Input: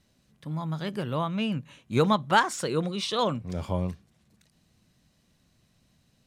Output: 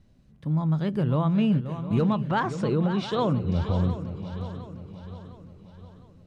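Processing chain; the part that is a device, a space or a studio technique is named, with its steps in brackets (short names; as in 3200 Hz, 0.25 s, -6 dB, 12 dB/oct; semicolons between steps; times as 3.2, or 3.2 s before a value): tilt -3 dB/oct; 2.01–3.91 LPF 5600 Hz 12 dB/oct; clipper into limiter (hard clip -9 dBFS, distortion -31 dB; limiter -16 dBFS, peak gain reduction 7 dB); swung echo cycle 0.708 s, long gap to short 3:1, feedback 46%, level -11 dB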